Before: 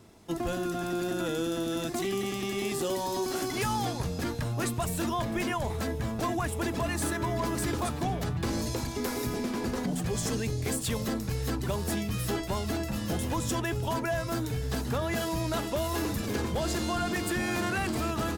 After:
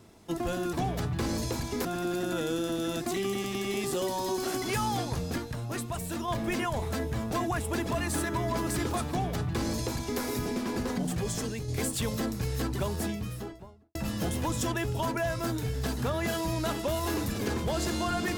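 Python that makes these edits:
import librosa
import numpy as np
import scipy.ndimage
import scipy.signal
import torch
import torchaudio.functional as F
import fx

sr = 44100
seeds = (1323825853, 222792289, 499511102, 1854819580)

y = fx.studio_fade_out(x, sr, start_s=11.68, length_s=1.15)
y = fx.edit(y, sr, fx.clip_gain(start_s=4.26, length_s=0.9, db=-4.0),
    fx.duplicate(start_s=7.97, length_s=1.12, to_s=0.73),
    fx.fade_out_to(start_s=10.01, length_s=0.55, floor_db=-6.0), tone=tone)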